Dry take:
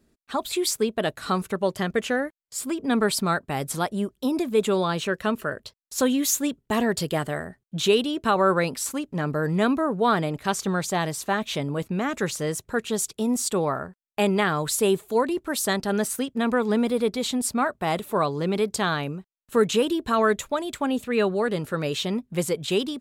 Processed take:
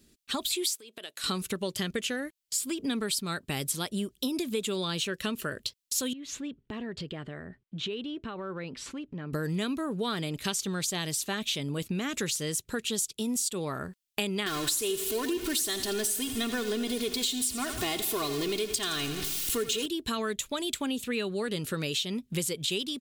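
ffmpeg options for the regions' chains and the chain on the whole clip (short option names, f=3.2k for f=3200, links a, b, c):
-filter_complex "[0:a]asettb=1/sr,asplit=3[a][b][c];[a]atrim=end=0.754[d];[b]atrim=start=0.75:end=1.24,asetpts=PTS-STARTPTS,afade=t=in:d=0.004:c=qsin,afade=t=out:st=0.486:d=0.004:c=qsin,highpass=450,acompressor=threshold=-40dB:ratio=6:attack=3.2:release=140:knee=1:detection=peak[e];[c]atrim=start=1.236[f];[d][e]acrossfade=d=0.004:c1=hsin:c2=qsin[g];[g][f]acrossfade=d=0.004:c1=qsin:c2=hsin,asettb=1/sr,asplit=3[h][i][j];[h]atrim=end=6.134[k];[i]atrim=start=6.13:end=9.33,asetpts=PTS-STARTPTS,afade=t=in:d=0.004:c=qsin,afade=t=out:st=3.196:d=0.004:c=qsin,lowpass=1.9k,acompressor=threshold=-41dB:ratio=2.5:attack=3.2:release=140:knee=1:detection=peak[l];[j]atrim=start=9.326[m];[k][l]acrossfade=d=0.004:c1=hsin:c2=qsin[n];[n][m]acrossfade=d=0.004:c1=qsin:c2=hsin,asettb=1/sr,asplit=3[o][p][q];[o]atrim=end=14.464[r];[p]atrim=start=14.46:end=19.86,asetpts=PTS-STARTPTS,afade=t=in:d=0.004:c=qsin,afade=t=out:st=5.396:d=0.004:c=qsin,aeval=exprs='val(0)+0.5*0.0355*sgn(val(0))':c=same,aecho=1:1:2.8:0.69,atrim=end_sample=238140,aecho=1:1:83|166|249|332|415|498:0.237|0.135|0.077|0.0439|0.025|0.0143,atrim=end_sample=238140[s];[q]atrim=start=19.856[t];[r][s]acrossfade=d=0.004:c1=hsin:c2=qsin[u];[u][t]acrossfade=d=0.004:c1=qsin:c2=hsin,firequalizer=gain_entry='entry(350,0);entry(700,-8);entry(3000,9)':delay=0.05:min_phase=1,acompressor=threshold=-30dB:ratio=6,volume=1.5dB"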